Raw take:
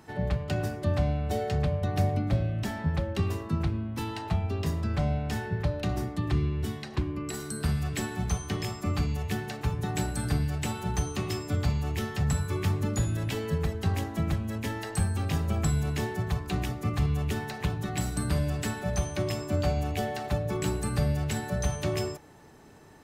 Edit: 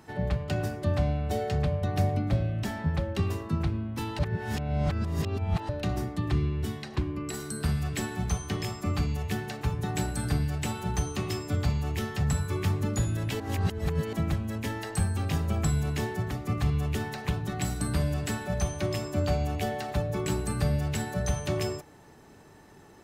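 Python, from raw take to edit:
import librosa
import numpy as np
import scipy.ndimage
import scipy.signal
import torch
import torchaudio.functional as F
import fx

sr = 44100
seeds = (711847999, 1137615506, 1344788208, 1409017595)

y = fx.edit(x, sr, fx.reverse_span(start_s=4.19, length_s=1.5),
    fx.reverse_span(start_s=13.4, length_s=0.73),
    fx.cut(start_s=16.31, length_s=0.36), tone=tone)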